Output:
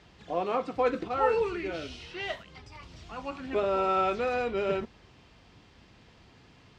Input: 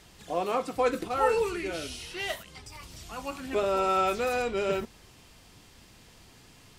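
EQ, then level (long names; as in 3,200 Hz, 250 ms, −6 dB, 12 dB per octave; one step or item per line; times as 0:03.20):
high-pass filter 43 Hz
high-frequency loss of the air 170 metres
0.0 dB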